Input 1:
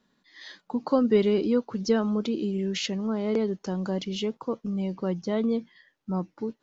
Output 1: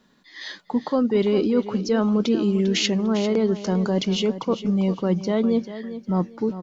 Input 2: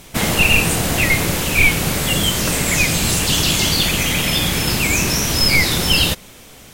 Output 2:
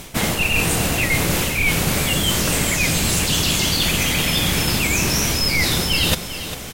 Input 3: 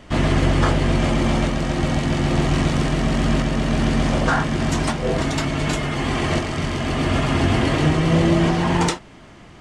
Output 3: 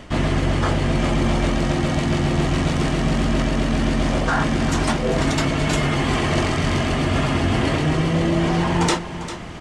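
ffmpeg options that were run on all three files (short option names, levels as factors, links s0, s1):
-af "areverse,acompressor=threshold=0.0501:ratio=6,areverse,aecho=1:1:399|798|1197:0.237|0.0617|0.016,volume=2.82"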